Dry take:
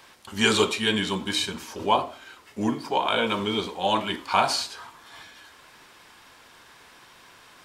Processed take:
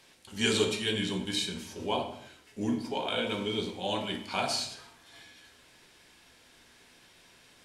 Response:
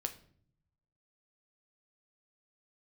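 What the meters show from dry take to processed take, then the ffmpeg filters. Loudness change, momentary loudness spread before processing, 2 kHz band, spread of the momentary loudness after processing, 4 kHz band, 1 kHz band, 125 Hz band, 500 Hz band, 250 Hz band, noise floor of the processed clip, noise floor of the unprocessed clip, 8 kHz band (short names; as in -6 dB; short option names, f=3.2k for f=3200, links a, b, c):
-6.5 dB, 14 LU, -7.5 dB, 11 LU, -5.5 dB, -11.5 dB, -3.5 dB, -5.5 dB, -4.5 dB, -60 dBFS, -53 dBFS, -4.5 dB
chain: -filter_complex "[0:a]equalizer=f=1.1k:w=1.2:g=-10.5[a];[1:a]atrim=start_sample=2205,afade=t=out:st=0.23:d=0.01,atrim=end_sample=10584,asetrate=23373,aresample=44100[b];[a][b]afir=irnorm=-1:irlink=0,volume=-7.5dB"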